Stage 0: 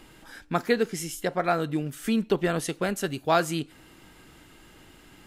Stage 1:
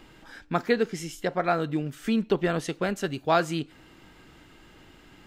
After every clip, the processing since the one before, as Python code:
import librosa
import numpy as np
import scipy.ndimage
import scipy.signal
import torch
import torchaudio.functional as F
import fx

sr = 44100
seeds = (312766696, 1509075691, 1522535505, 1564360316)

y = fx.peak_eq(x, sr, hz=11000.0, db=-12.0, octaves=0.92)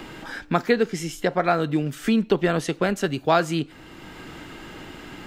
y = fx.band_squash(x, sr, depth_pct=40)
y = y * 10.0 ** (4.5 / 20.0)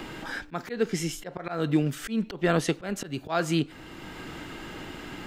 y = fx.auto_swell(x, sr, attack_ms=203.0)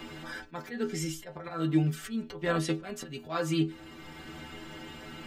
y = fx.stiff_resonator(x, sr, f0_hz=76.0, decay_s=0.31, stiffness=0.008)
y = y * 10.0 ** (4.0 / 20.0)